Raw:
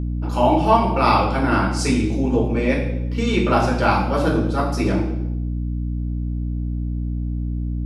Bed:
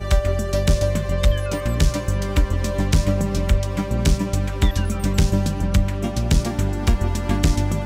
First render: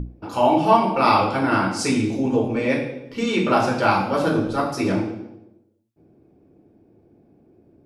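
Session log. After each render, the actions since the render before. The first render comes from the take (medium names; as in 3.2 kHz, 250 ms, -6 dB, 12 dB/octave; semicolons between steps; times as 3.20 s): hum notches 60/120/180/240/300/360 Hz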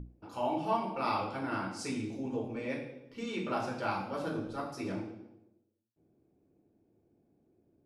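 trim -15.5 dB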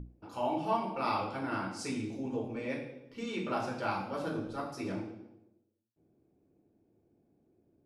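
no audible change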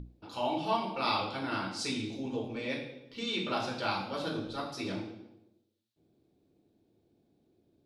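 peaking EQ 3.8 kHz +14.5 dB 0.85 oct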